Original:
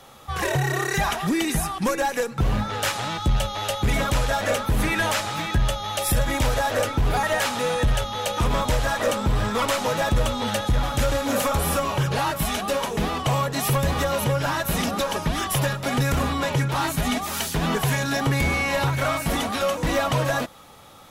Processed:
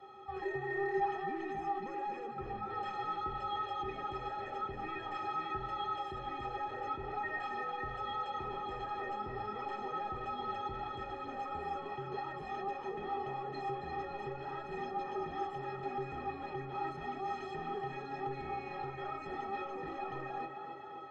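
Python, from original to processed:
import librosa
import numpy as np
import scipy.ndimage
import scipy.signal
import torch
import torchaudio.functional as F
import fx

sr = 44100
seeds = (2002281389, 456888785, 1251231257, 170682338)

p1 = scipy.signal.sosfilt(scipy.signal.butter(2, 120.0, 'highpass', fs=sr, output='sos'), x)
p2 = fx.over_compress(p1, sr, threshold_db=-33.0, ratio=-1.0)
p3 = p1 + F.gain(torch.from_numpy(p2), 2.0).numpy()
p4 = np.clip(10.0 ** (16.5 / 20.0) * p3, -1.0, 1.0) / 10.0 ** (16.5 / 20.0)
p5 = fx.spacing_loss(p4, sr, db_at_10k=45)
p6 = fx.stiff_resonator(p5, sr, f0_hz=380.0, decay_s=0.24, stiffness=0.03)
p7 = p6 + fx.echo_tape(p6, sr, ms=269, feedback_pct=83, wet_db=-6.5, lp_hz=2800.0, drive_db=31.0, wow_cents=33, dry=0)
y = F.gain(torch.from_numpy(p7), 2.0).numpy()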